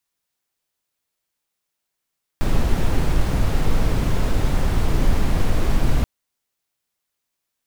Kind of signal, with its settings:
noise brown, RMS −16 dBFS 3.63 s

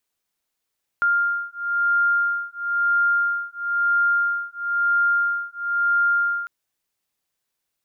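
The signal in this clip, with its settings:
two tones that beat 1,400 Hz, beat 1 Hz, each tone −21.5 dBFS 5.45 s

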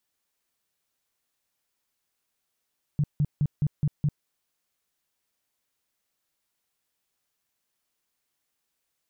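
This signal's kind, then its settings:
tone bursts 147 Hz, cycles 7, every 0.21 s, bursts 6, −19.5 dBFS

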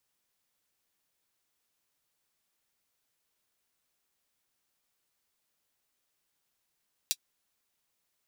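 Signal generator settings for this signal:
closed synth hi-hat, high-pass 3,800 Hz, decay 0.06 s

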